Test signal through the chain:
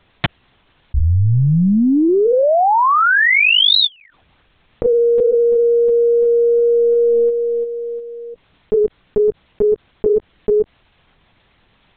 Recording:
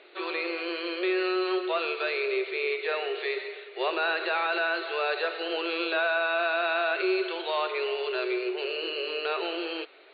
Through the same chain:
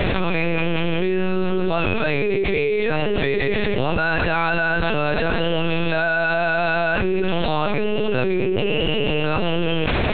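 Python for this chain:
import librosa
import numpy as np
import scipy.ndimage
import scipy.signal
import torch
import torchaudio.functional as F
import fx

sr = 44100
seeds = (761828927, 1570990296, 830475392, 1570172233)

y = fx.low_shelf(x, sr, hz=270.0, db=12.0)
y = fx.lpc_vocoder(y, sr, seeds[0], excitation='pitch_kept', order=8)
y = fx.env_flatten(y, sr, amount_pct=100)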